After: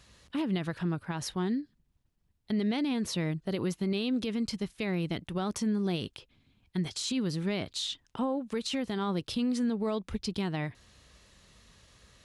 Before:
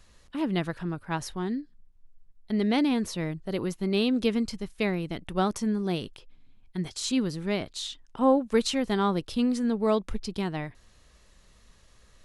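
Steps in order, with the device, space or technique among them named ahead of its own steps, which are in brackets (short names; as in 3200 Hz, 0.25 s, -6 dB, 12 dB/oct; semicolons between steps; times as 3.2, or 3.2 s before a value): broadcast voice chain (HPF 81 Hz 12 dB/oct; de-esser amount 45%; compressor 4:1, threshold -28 dBFS, peak gain reduction 10 dB; bell 3400 Hz +4 dB 1.6 oct; limiter -24.5 dBFS, peak gain reduction 7.5 dB); low shelf 150 Hz +7 dB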